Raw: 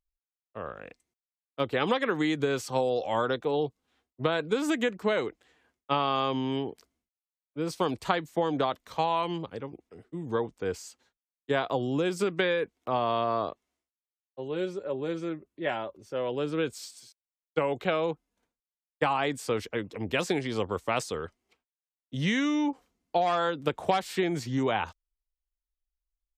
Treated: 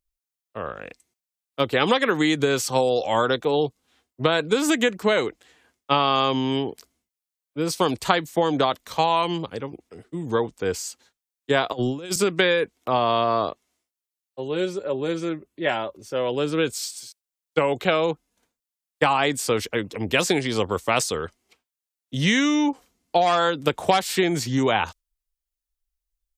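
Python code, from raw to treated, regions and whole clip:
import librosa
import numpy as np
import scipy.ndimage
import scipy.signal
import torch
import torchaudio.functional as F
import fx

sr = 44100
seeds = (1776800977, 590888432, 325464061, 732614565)

y = fx.chain(x, sr, fx.over_compress(threshold_db=-31.0, ratio=-0.5),
    fx.band_widen(depth_pct=100), at=(11.72, 12.16))
y = fx.noise_reduce_blind(y, sr, reduce_db=7)
y = fx.high_shelf(y, sr, hz=3600.0, db=8.5)
y = y * 10.0 ** (6.0 / 20.0)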